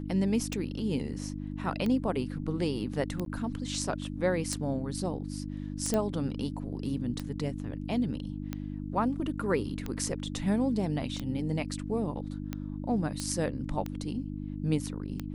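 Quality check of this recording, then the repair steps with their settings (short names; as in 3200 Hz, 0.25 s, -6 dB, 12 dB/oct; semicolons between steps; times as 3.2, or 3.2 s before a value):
hum 50 Hz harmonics 6 -37 dBFS
tick 45 rpm -20 dBFS
3.25–3.26 gap 12 ms
5.94 pop -15 dBFS
13.2 pop -19 dBFS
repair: de-click; de-hum 50 Hz, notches 6; interpolate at 3.25, 12 ms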